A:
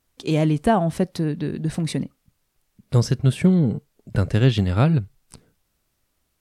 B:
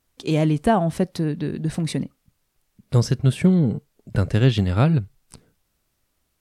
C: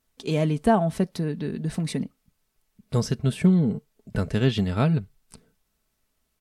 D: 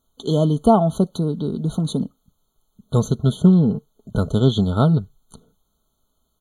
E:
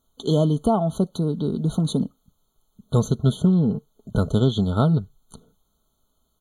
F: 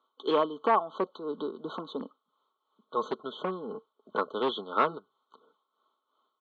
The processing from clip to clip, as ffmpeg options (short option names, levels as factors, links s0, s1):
-af anull
-af "aecho=1:1:4.6:0.4,volume=0.668"
-af "afftfilt=real='re*eq(mod(floor(b*sr/1024/1500),2),0)':imag='im*eq(mod(floor(b*sr/1024/1500),2),0)':win_size=1024:overlap=0.75,volume=1.88"
-af "alimiter=limit=0.355:level=0:latency=1:release=480"
-af "tremolo=f=2.9:d=0.63,asoftclip=type=hard:threshold=0.188,highpass=f=380:w=0.5412,highpass=f=380:w=1.3066,equalizer=f=420:t=q:w=4:g=-3,equalizer=f=680:t=q:w=4:g=-8,equalizer=f=1100:t=q:w=4:g=10,lowpass=f=3200:w=0.5412,lowpass=f=3200:w=1.3066,volume=1.33"